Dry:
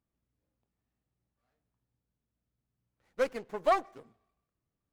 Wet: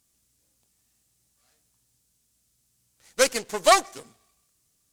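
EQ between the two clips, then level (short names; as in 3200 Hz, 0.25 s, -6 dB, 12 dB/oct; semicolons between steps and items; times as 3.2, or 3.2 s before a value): high shelf 2700 Hz +9.5 dB; bell 7900 Hz +15 dB 2.1 oct; +6.5 dB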